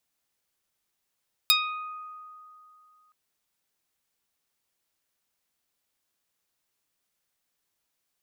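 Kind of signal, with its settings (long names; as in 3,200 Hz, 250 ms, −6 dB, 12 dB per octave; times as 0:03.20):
Karplus-Strong string D#6, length 1.62 s, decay 2.84 s, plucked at 0.15, medium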